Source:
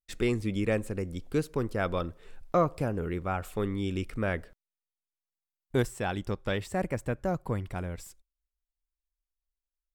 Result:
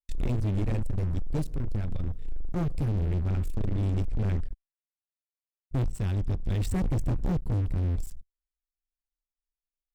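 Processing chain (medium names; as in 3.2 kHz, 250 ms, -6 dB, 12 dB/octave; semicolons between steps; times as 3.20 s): 1.47–2.56 s: compression, threshold -31 dBFS, peak gain reduction 7.5 dB; amplifier tone stack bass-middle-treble 10-0-1; 6.60–7.39 s: waveshaping leveller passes 2; bass shelf 150 Hz +10 dB; 4.08–5.94 s: low-pass that closes with the level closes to 360 Hz, closed at -22.5 dBFS; waveshaping leveller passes 5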